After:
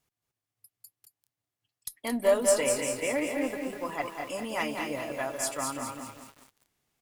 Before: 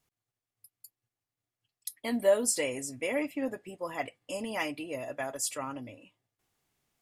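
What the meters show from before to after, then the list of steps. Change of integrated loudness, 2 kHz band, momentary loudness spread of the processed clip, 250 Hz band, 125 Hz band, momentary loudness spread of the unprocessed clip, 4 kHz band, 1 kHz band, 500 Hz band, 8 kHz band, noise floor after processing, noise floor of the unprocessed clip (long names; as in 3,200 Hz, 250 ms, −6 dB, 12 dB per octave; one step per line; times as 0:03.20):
+3.0 dB, +3.0 dB, 14 LU, +2.0 dB, +2.0 dB, 14 LU, +2.5 dB, +4.5 dB, +3.0 dB, +2.0 dB, below −85 dBFS, below −85 dBFS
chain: harmonic generator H 6 −29 dB, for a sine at −12.5 dBFS
dynamic equaliser 1,100 Hz, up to +4 dB, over −50 dBFS, Q 1.6
single-tap delay 224 ms −7 dB
feedback echo at a low word length 197 ms, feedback 55%, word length 8 bits, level −5.5 dB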